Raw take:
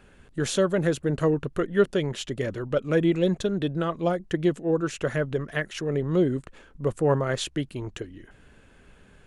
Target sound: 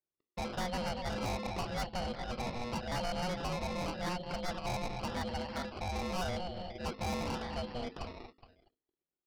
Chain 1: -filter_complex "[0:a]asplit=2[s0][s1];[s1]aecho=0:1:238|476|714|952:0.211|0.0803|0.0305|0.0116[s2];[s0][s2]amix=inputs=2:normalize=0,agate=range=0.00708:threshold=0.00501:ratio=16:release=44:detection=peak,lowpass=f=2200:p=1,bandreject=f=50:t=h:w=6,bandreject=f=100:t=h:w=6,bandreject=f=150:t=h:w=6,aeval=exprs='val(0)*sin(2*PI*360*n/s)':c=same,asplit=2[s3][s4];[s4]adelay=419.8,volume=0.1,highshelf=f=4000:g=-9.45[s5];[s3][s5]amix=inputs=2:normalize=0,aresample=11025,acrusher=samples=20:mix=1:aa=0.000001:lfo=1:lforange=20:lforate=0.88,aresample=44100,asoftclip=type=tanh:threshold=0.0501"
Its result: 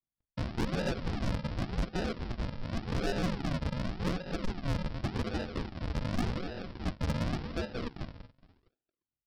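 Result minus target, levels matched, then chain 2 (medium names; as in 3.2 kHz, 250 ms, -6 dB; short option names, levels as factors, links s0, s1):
decimation with a swept rate: distortion +10 dB; saturation: distortion -4 dB
-filter_complex "[0:a]asplit=2[s0][s1];[s1]aecho=0:1:238|476|714|952:0.211|0.0803|0.0305|0.0116[s2];[s0][s2]amix=inputs=2:normalize=0,agate=range=0.00708:threshold=0.00501:ratio=16:release=44:detection=peak,lowpass=f=2200:p=1,bandreject=f=50:t=h:w=6,bandreject=f=100:t=h:w=6,bandreject=f=150:t=h:w=6,aeval=exprs='val(0)*sin(2*PI*360*n/s)':c=same,asplit=2[s3][s4];[s4]adelay=419.8,volume=0.1,highshelf=f=4000:g=-9.45[s5];[s3][s5]amix=inputs=2:normalize=0,aresample=11025,acrusher=samples=5:mix=1:aa=0.000001:lfo=1:lforange=5:lforate=0.88,aresample=44100,asoftclip=type=tanh:threshold=0.0237"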